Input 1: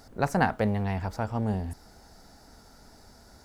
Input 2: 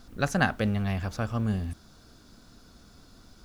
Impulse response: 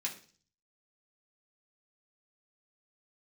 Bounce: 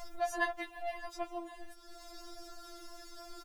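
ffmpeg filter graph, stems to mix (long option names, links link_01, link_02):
-filter_complex "[0:a]volume=-6dB[link_01];[1:a]bandreject=frequency=1500:width=18,adelay=3.6,volume=-7dB[link_02];[link_01][link_02]amix=inputs=2:normalize=0,acompressor=mode=upward:threshold=-35dB:ratio=2.5,afftfilt=real='re*4*eq(mod(b,16),0)':imag='im*4*eq(mod(b,16),0)':win_size=2048:overlap=0.75"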